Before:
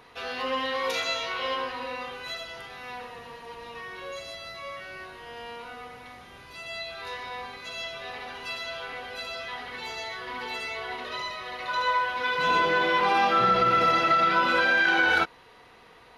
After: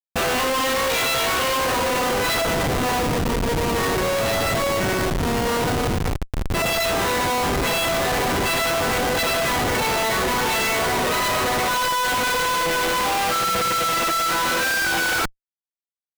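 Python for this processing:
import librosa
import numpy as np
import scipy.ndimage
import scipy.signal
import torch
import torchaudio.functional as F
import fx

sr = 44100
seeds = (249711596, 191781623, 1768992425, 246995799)

y = fx.schmitt(x, sr, flips_db=-39.0)
y = y * 10.0 ** (7.5 / 20.0)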